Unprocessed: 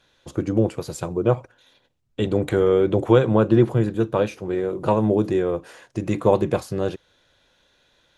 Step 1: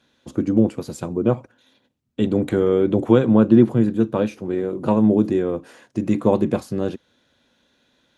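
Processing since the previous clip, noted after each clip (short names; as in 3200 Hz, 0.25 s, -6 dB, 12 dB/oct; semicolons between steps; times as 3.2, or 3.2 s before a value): HPF 54 Hz; bell 240 Hz +13 dB 0.63 oct; gain -2.5 dB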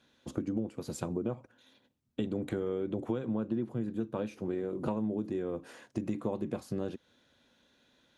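compressor 6:1, threshold -26 dBFS, peak gain reduction 17.5 dB; gain -4.5 dB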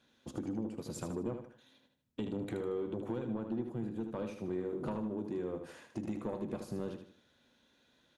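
soft clip -25.5 dBFS, distortion -17 dB; feedback echo 77 ms, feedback 37%, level -7 dB; gain -3 dB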